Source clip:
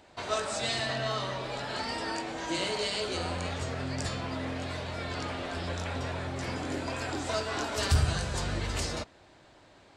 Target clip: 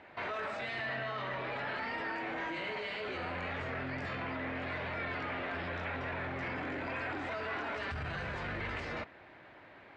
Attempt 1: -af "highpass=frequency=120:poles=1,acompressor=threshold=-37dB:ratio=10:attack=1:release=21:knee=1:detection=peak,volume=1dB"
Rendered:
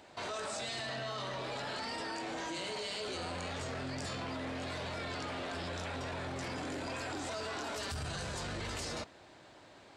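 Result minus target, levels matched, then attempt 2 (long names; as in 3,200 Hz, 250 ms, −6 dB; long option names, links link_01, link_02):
2,000 Hz band −4.0 dB
-af "highpass=frequency=120:poles=1,acompressor=threshold=-37dB:ratio=10:attack=1:release=21:knee=1:detection=peak,lowpass=frequency=2100:width_type=q:width=2.2,volume=1dB"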